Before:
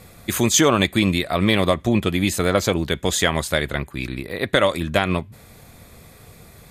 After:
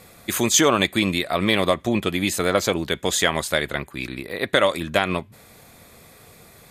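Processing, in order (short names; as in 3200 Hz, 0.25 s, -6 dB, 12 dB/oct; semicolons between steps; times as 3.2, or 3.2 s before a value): low shelf 150 Hz -11 dB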